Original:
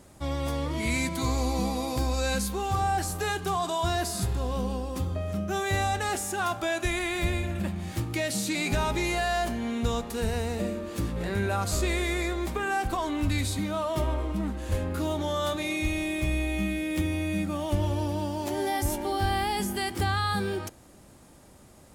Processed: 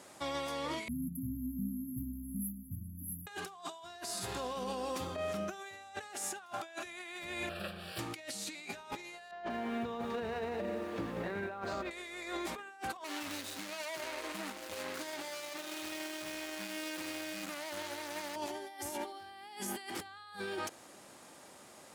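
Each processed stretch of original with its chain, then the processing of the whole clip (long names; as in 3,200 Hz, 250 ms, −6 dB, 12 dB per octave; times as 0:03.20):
0:00.88–0:03.27: linear-phase brick-wall band-stop 290–11,000 Hz + comb filter 1.1 ms, depth 66%
0:07.49–0:07.99: lower of the sound and its delayed copy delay 0.4 ms + phaser with its sweep stopped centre 1,400 Hz, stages 8
0:09.31–0:11.91: head-to-tape spacing loss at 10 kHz 35 dB + feedback echo at a low word length 188 ms, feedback 55%, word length 9 bits, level −8.5 dB
0:13.04–0:18.36: running median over 41 samples + spectral tilt +4 dB per octave
whole clip: meter weighting curve A; compressor whose output falls as the input rises −37 dBFS, ratio −0.5; brickwall limiter −27.5 dBFS; level −1 dB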